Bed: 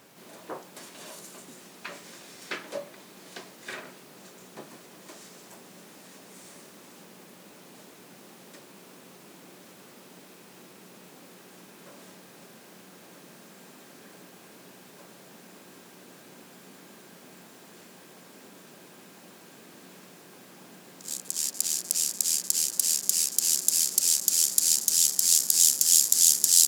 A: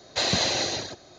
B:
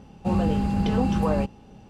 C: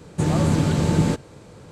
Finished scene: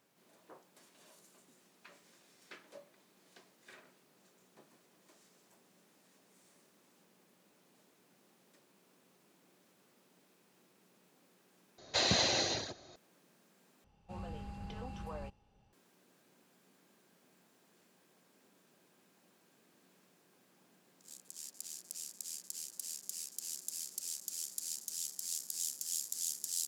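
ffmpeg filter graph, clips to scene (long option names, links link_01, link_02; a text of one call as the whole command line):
ffmpeg -i bed.wav -i cue0.wav -i cue1.wav -filter_complex "[0:a]volume=-18.5dB[link_01];[2:a]equalizer=frequency=250:width=0.82:gain=-10[link_02];[link_01]asplit=3[link_03][link_04][link_05];[link_03]atrim=end=11.784[link_06];[1:a]atrim=end=1.18,asetpts=PTS-STARTPTS,volume=-6dB[link_07];[link_04]atrim=start=12.956:end=13.844[link_08];[link_02]atrim=end=1.89,asetpts=PTS-STARTPTS,volume=-17dB[link_09];[link_05]atrim=start=15.726[link_10];[link_06][link_07]acrossfade=duration=0.004:curve1=hsin:curve2=hsin[link_11];[link_11][link_08]acrossfade=duration=0.004:curve1=hsin:curve2=hsin[link_12];[link_12][link_09]acrossfade=duration=0.004:curve1=hsin:curve2=hsin[link_13];[link_13][link_10]acrossfade=duration=0.004:curve1=hsin:curve2=hsin" out.wav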